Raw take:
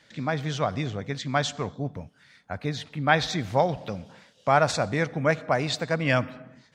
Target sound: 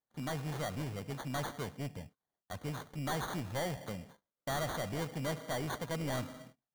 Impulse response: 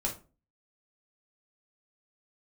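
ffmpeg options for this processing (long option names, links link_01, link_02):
-af "agate=range=-31dB:threshold=-46dB:ratio=16:detection=peak,acrusher=samples=17:mix=1:aa=0.000001,asoftclip=type=tanh:threshold=-25.5dB,volume=-6.5dB"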